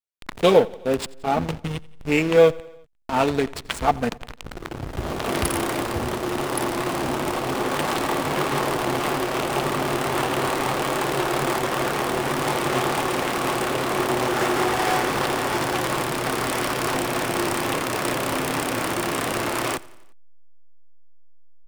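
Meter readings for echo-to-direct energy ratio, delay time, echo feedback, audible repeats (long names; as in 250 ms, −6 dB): −20.5 dB, 88 ms, 60%, 3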